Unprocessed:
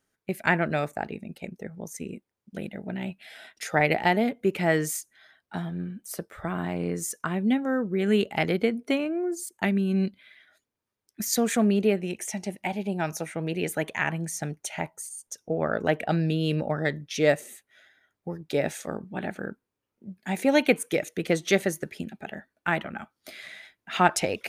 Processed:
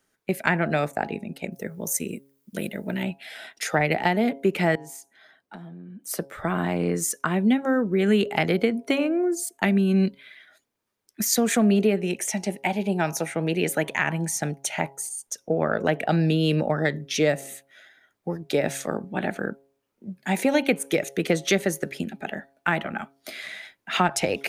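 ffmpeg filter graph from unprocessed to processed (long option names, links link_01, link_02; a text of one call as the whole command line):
ffmpeg -i in.wav -filter_complex "[0:a]asettb=1/sr,asplit=3[link_01][link_02][link_03];[link_01]atrim=end=1.524[link_04];[link_02]atrim=start=1.52:end=3.03,asetpts=PTS-STARTPTS,afade=type=in:duration=0.004:curve=qsin,afade=type=out:start_time=1.506:duration=0.004:curve=qsin,asuperstop=centerf=760:order=4:qfactor=6.9,aemphasis=mode=production:type=50fm[link_05];[link_03]atrim=start=3.026[link_06];[link_04][link_05]acrossfade=duration=0.004:curve1=hsin:curve2=qsin[link_07];[link_07][link_06]acrossfade=duration=0.004:curve1=qsin:curve2=hsin,asettb=1/sr,asplit=3[link_08][link_09][link_10];[link_08]atrim=end=4.754[link_11];[link_09]atrim=start=4.75:end=6.07,asetpts=PTS-STARTPTS,afade=type=in:duration=0.004:curve=qsin,afade=type=out:start_time=1.316:duration=0.004:curve=qsin,highpass=frequency=230:poles=1,tiltshelf=frequency=690:gain=6,acompressor=threshold=-42dB:ratio=10:attack=3.2:release=140:knee=1:detection=peak[link_12];[link_10]atrim=start=6.066[link_13];[link_11][link_12]acrossfade=duration=0.004:curve1=hsin:curve2=qsin[link_14];[link_14][link_13]acrossfade=duration=0.004:curve1=qsin:curve2=hsin,equalizer=frequency=66:width_type=o:width=1.8:gain=-7,bandreject=frequency=137.2:width_type=h:width=4,bandreject=frequency=274.4:width_type=h:width=4,bandreject=frequency=411.6:width_type=h:width=4,bandreject=frequency=548.8:width_type=h:width=4,bandreject=frequency=686:width_type=h:width=4,bandreject=frequency=823.2:width_type=h:width=4,bandreject=frequency=960.4:width_type=h:width=4,acrossover=split=190[link_15][link_16];[link_16]acompressor=threshold=-25dB:ratio=4[link_17];[link_15][link_17]amix=inputs=2:normalize=0,volume=6dB" out.wav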